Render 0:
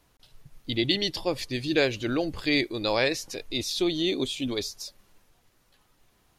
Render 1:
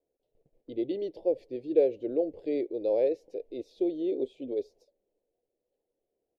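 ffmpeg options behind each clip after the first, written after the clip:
-af "firequalizer=gain_entry='entry(160,0);entry(480,13);entry(1200,-30);entry(2200,-17)':delay=0.05:min_phase=1,agate=range=-9dB:threshold=-47dB:ratio=16:detection=peak,bass=f=250:g=-15,treble=f=4k:g=-13,volume=-6.5dB"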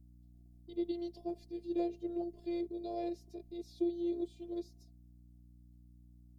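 -af "afftfilt=real='hypot(re,im)*cos(PI*b)':imag='0':win_size=512:overlap=0.75,aeval=exprs='val(0)+0.00224*(sin(2*PI*60*n/s)+sin(2*PI*2*60*n/s)/2+sin(2*PI*3*60*n/s)/3+sin(2*PI*4*60*n/s)/4+sin(2*PI*5*60*n/s)/5)':c=same,aexciter=amount=4.2:drive=4.2:freq=3.9k,volume=-4.5dB"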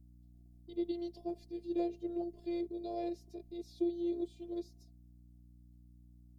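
-af anull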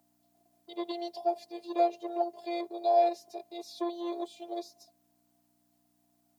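-filter_complex "[0:a]asplit=2[a][b];[b]asoftclip=type=tanh:threshold=-32dB,volume=-7dB[c];[a][c]amix=inputs=2:normalize=0,highpass=f=790:t=q:w=3.6,volume=9dB"

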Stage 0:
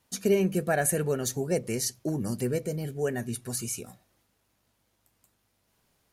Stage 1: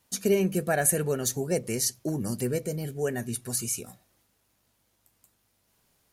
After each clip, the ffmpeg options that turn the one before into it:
-af "highshelf=f=5.3k:g=5"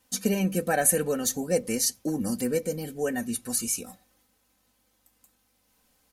-af "aecho=1:1:3.9:0.74"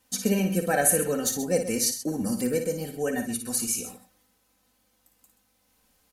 -af "aecho=1:1:56|130:0.422|0.237"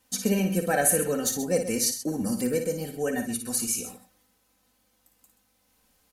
-af "asoftclip=type=tanh:threshold=-8.5dB"

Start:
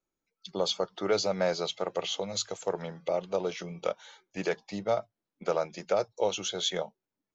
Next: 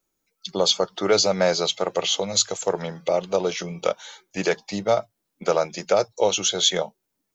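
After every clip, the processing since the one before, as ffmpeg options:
-af "highshelf=f=5.4k:g=10,volume=7.5dB"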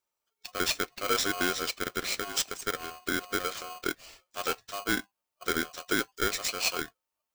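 -af "aeval=exprs='val(0)*sgn(sin(2*PI*900*n/s))':c=same,volume=-9dB"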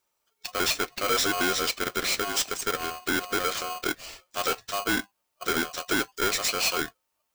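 -af "asoftclip=type=tanh:threshold=-29dB,volume=8.5dB"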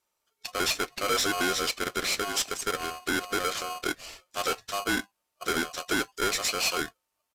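-af "aresample=32000,aresample=44100,volume=-1.5dB"

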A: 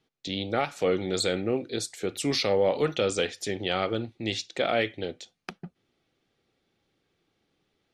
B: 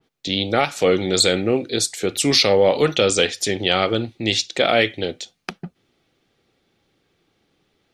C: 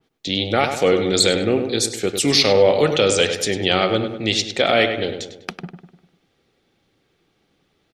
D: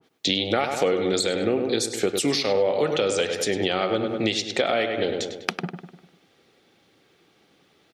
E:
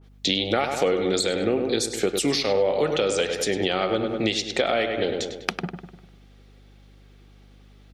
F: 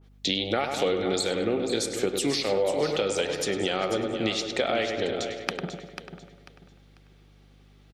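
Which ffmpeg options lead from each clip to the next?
-af "adynamicequalizer=threshold=0.00891:dfrequency=2400:dqfactor=0.7:tfrequency=2400:tqfactor=0.7:attack=5:release=100:ratio=0.375:range=2.5:mode=boostabove:tftype=highshelf,volume=8dB"
-filter_complex "[0:a]asplit=2[a][b];[b]adelay=100,lowpass=f=2.7k:p=1,volume=-7dB,asplit=2[c][d];[d]adelay=100,lowpass=f=2.7k:p=1,volume=0.51,asplit=2[e][f];[f]adelay=100,lowpass=f=2.7k:p=1,volume=0.51,asplit=2[g][h];[h]adelay=100,lowpass=f=2.7k:p=1,volume=0.51,asplit=2[i][j];[j]adelay=100,lowpass=f=2.7k:p=1,volume=0.51,asplit=2[k][l];[l]adelay=100,lowpass=f=2.7k:p=1,volume=0.51[m];[a][c][e][g][i][k][m]amix=inputs=7:normalize=0"
-af "highpass=f=220:p=1,acompressor=threshold=-25dB:ratio=6,adynamicequalizer=threshold=0.00794:dfrequency=1800:dqfactor=0.7:tfrequency=1800:tqfactor=0.7:attack=5:release=100:ratio=0.375:range=2.5:mode=cutabove:tftype=highshelf,volume=6dB"
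-af "aeval=exprs='val(0)+0.00316*(sin(2*PI*50*n/s)+sin(2*PI*2*50*n/s)/2+sin(2*PI*3*50*n/s)/3+sin(2*PI*4*50*n/s)/4+sin(2*PI*5*50*n/s)/5)':c=same"
-af "aecho=1:1:493|986|1479:0.316|0.0822|0.0214,volume=-3.5dB"

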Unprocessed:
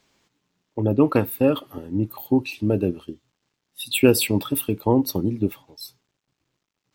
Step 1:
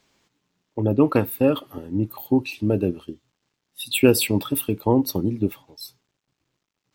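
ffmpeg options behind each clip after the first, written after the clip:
-af anull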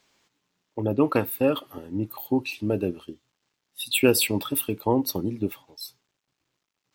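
-af "lowshelf=f=380:g=-7"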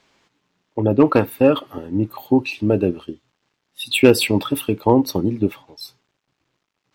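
-af "volume=10dB,asoftclip=hard,volume=-10dB,aemphasis=mode=reproduction:type=50kf,volume=8dB"

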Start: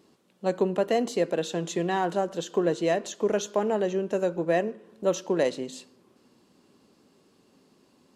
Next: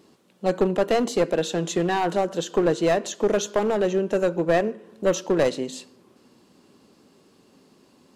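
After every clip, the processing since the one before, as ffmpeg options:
-af "aeval=exprs='clip(val(0),-1,0.0708)':c=same,volume=5dB"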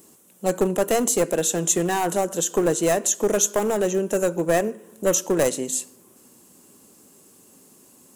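-af "aexciter=amount=10.7:drive=3.3:freq=6.5k"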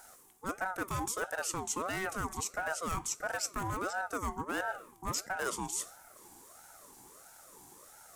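-af "areverse,acompressor=threshold=-31dB:ratio=5,areverse,aeval=exprs='val(0)*sin(2*PI*840*n/s+840*0.35/1.5*sin(2*PI*1.5*n/s))':c=same"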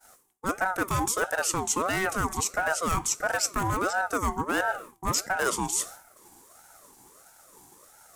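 -af "agate=range=-33dB:threshold=-48dB:ratio=3:detection=peak,volume=8.5dB"

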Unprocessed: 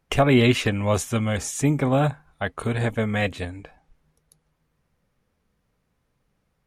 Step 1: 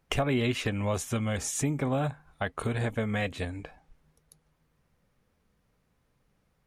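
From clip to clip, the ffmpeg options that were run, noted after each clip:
-af "acompressor=threshold=-29dB:ratio=2.5"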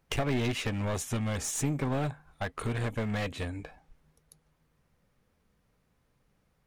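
-af "aeval=exprs='clip(val(0),-1,0.0282)':c=same"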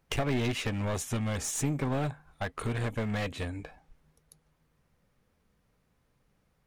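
-af anull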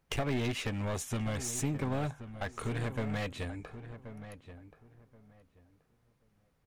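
-filter_complex "[0:a]asplit=2[a][b];[b]adelay=1079,lowpass=f=1.7k:p=1,volume=-11.5dB,asplit=2[c][d];[d]adelay=1079,lowpass=f=1.7k:p=1,volume=0.22,asplit=2[e][f];[f]adelay=1079,lowpass=f=1.7k:p=1,volume=0.22[g];[a][c][e][g]amix=inputs=4:normalize=0,volume=-3dB"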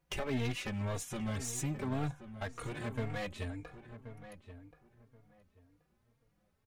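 -filter_complex "[0:a]asplit=2[a][b];[b]adelay=3.7,afreqshift=1.9[c];[a][c]amix=inputs=2:normalize=1"

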